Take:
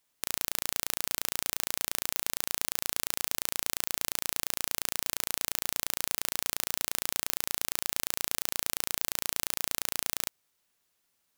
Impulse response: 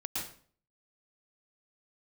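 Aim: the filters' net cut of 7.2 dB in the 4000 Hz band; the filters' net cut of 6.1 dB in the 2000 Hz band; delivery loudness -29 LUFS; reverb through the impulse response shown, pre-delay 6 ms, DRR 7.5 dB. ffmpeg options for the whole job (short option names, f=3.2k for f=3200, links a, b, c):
-filter_complex "[0:a]equalizer=f=2k:t=o:g=-5.5,equalizer=f=4k:t=o:g=-8,asplit=2[a][b];[1:a]atrim=start_sample=2205,adelay=6[c];[b][c]afir=irnorm=-1:irlink=0,volume=-10dB[d];[a][d]amix=inputs=2:normalize=0,volume=2.5dB"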